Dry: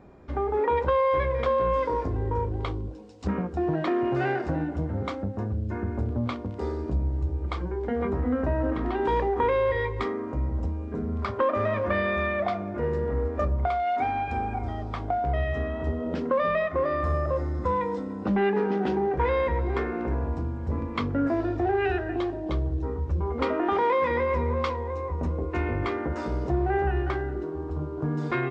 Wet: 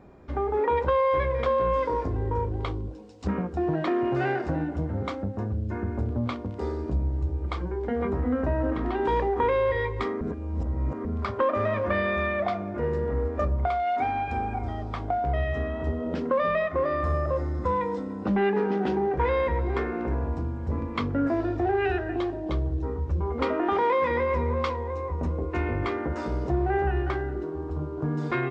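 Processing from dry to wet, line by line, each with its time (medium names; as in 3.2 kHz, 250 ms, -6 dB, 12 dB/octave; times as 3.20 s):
10.21–11.05 s: reverse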